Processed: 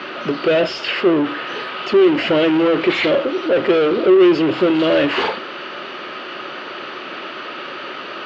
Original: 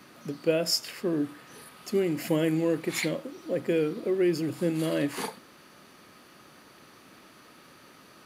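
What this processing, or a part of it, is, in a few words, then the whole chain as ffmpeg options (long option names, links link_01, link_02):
overdrive pedal into a guitar cabinet: -filter_complex "[0:a]asplit=2[link_01][link_02];[link_02]highpass=frequency=720:poles=1,volume=30dB,asoftclip=type=tanh:threshold=-12dB[link_03];[link_01][link_03]amix=inputs=2:normalize=0,lowpass=frequency=3700:poles=1,volume=-6dB,highpass=84,equalizer=frequency=370:width_type=q:width=4:gain=9,equalizer=frequency=580:width_type=q:width=4:gain=6,equalizer=frequency=1400:width_type=q:width=4:gain=5,equalizer=frequency=2900:width_type=q:width=4:gain=8,lowpass=frequency=4200:width=0.5412,lowpass=frequency=4200:width=1.3066"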